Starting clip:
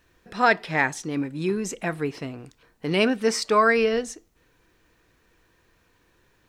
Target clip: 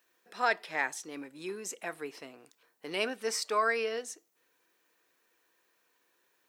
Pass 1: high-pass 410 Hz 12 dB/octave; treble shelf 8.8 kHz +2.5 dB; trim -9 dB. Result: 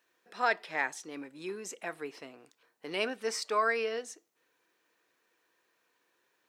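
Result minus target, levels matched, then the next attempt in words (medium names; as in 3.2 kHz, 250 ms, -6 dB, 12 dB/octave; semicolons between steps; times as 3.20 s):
8 kHz band -3.0 dB
high-pass 410 Hz 12 dB/octave; treble shelf 8.8 kHz +11.5 dB; trim -9 dB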